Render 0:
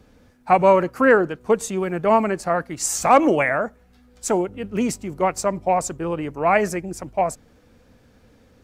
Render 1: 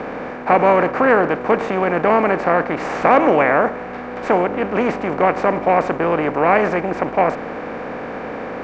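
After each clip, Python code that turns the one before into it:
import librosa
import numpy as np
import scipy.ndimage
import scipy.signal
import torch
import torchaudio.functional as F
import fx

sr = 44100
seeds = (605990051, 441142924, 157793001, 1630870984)

y = fx.bin_compress(x, sr, power=0.4)
y = scipy.signal.sosfilt(scipy.signal.butter(4, 3600.0, 'lowpass', fs=sr, output='sos'), y)
y = y * librosa.db_to_amplitude(-2.5)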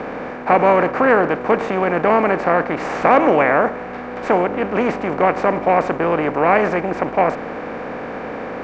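y = x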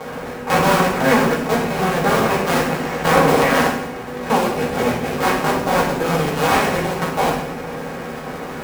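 y = fx.cycle_switch(x, sr, every=2, mode='muted')
y = fx.rev_fdn(y, sr, rt60_s=0.78, lf_ratio=1.6, hf_ratio=1.0, size_ms=37.0, drr_db=-6.0)
y = y * librosa.db_to_amplitude(-5.5)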